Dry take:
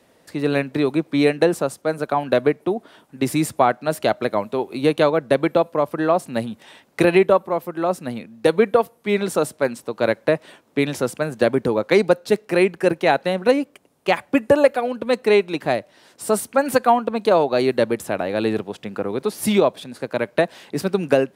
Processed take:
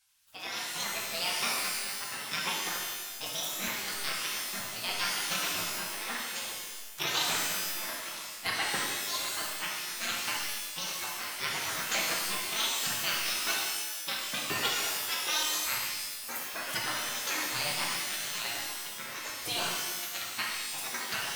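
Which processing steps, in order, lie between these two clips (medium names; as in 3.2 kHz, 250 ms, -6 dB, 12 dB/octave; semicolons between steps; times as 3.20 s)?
sawtooth pitch modulation +10 st, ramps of 919 ms; spectral gate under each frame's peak -20 dB weak; pitch-shifted reverb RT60 1.3 s, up +12 st, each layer -2 dB, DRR -3 dB; trim -5 dB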